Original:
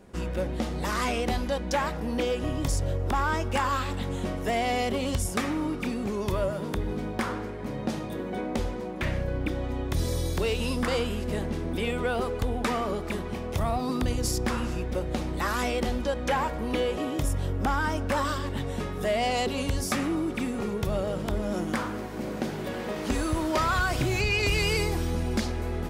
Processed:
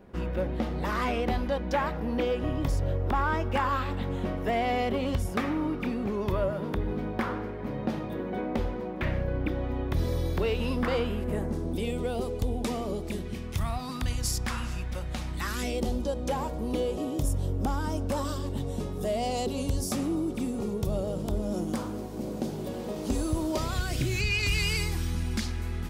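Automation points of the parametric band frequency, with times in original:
parametric band −14 dB 1.6 octaves
0:11.09 8,100 Hz
0:11.81 1,500 Hz
0:13.02 1,500 Hz
0:13.79 390 Hz
0:15.29 390 Hz
0:15.83 1,800 Hz
0:23.50 1,800 Hz
0:24.38 550 Hz

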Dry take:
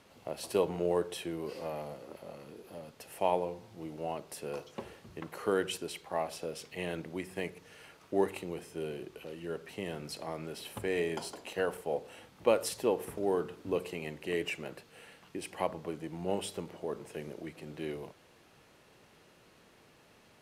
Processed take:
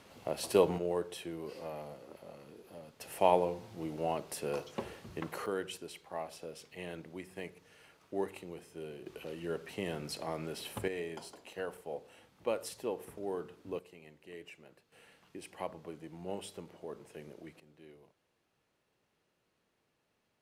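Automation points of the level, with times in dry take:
+3 dB
from 0:00.78 −4 dB
from 0:03.01 +3 dB
from 0:05.46 −6.5 dB
from 0:09.06 +1 dB
from 0:10.88 −7.5 dB
from 0:13.79 −15.5 dB
from 0:14.92 −7 dB
from 0:17.60 −17.5 dB

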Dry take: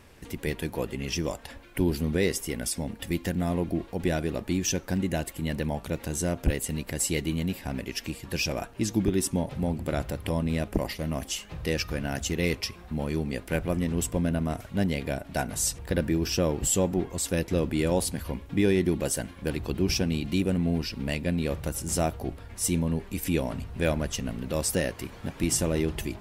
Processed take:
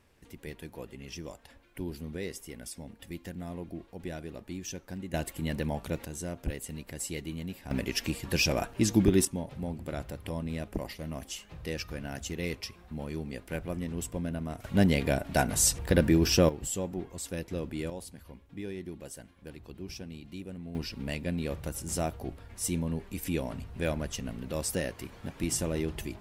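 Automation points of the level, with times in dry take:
−12 dB
from 0:05.14 −2.5 dB
from 0:06.05 −9 dB
from 0:07.71 +2 dB
from 0:09.25 −7.5 dB
from 0:14.64 +3 dB
from 0:16.49 −9 dB
from 0:17.90 −16 dB
from 0:20.75 −5 dB

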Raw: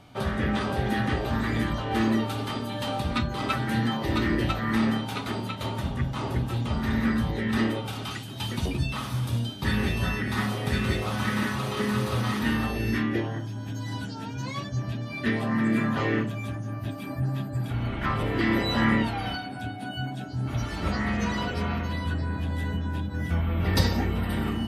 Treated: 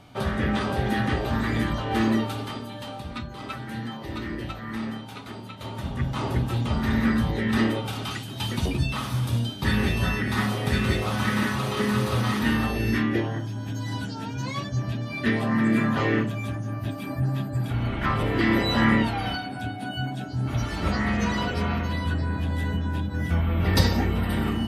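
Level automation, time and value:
0:02.17 +1.5 dB
0:02.97 −7.5 dB
0:05.48 −7.5 dB
0:06.13 +2.5 dB

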